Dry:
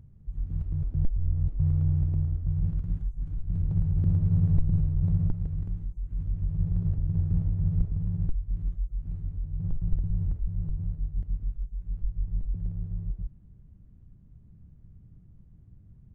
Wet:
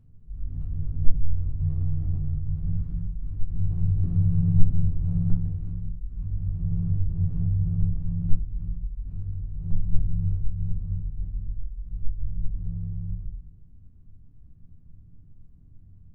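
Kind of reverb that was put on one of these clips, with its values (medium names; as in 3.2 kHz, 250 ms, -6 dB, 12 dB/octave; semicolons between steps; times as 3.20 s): simulated room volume 230 m³, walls furnished, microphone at 3.3 m; trim -9.5 dB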